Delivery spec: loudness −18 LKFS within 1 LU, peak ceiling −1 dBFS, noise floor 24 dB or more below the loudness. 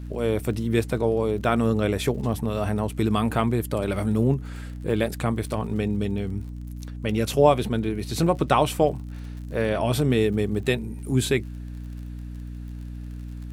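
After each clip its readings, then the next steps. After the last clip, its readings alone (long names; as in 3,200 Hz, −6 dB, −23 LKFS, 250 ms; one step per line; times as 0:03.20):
crackle rate 44 per second; mains hum 60 Hz; hum harmonics up to 300 Hz; level of the hum −32 dBFS; integrated loudness −24.5 LKFS; sample peak −4.0 dBFS; target loudness −18.0 LKFS
→ click removal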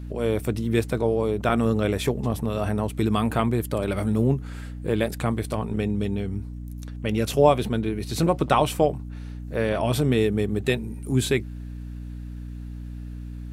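crackle rate 0.30 per second; mains hum 60 Hz; hum harmonics up to 300 Hz; level of the hum −33 dBFS
→ mains-hum notches 60/120/180/240/300 Hz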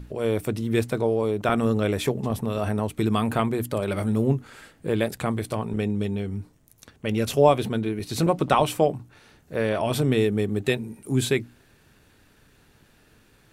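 mains hum none found; integrated loudness −25.0 LKFS; sample peak −4.0 dBFS; target loudness −18.0 LKFS
→ level +7 dB
brickwall limiter −1 dBFS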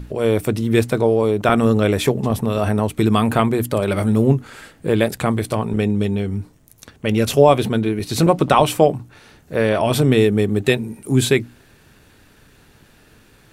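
integrated loudness −18.0 LKFS; sample peak −1.0 dBFS; background noise floor −52 dBFS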